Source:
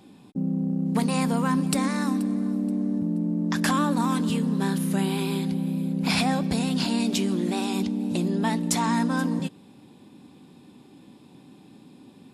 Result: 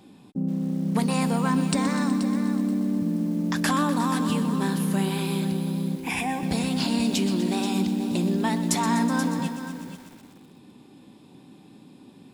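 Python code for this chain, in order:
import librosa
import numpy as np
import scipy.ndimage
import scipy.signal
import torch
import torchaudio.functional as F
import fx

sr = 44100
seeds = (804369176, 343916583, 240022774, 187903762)

y = fx.steep_lowpass(x, sr, hz=9100.0, slope=72, at=(1.41, 2.3))
y = fx.fixed_phaser(y, sr, hz=890.0, stages=8, at=(5.96, 6.43))
y = y + 10.0 ** (-11.5 / 20.0) * np.pad(y, (int(480 * sr / 1000.0), 0))[:len(y)]
y = fx.echo_crushed(y, sr, ms=124, feedback_pct=80, bits=7, wet_db=-12.5)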